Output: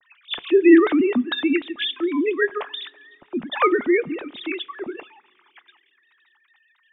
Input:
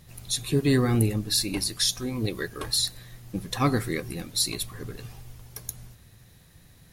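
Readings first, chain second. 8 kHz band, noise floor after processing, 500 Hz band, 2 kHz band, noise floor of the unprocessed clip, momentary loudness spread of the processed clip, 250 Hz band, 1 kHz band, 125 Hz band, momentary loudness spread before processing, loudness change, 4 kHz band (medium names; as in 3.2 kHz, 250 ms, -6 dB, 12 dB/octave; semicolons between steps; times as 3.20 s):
under -40 dB, -64 dBFS, +11.0 dB, +10.0 dB, -55 dBFS, 19 LU, +9.0 dB, +7.5 dB, -22.5 dB, 16 LU, +5.5 dB, -2.0 dB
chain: formants replaced by sine waves; two-slope reverb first 0.22 s, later 2.6 s, from -20 dB, DRR 19 dB; trim +6 dB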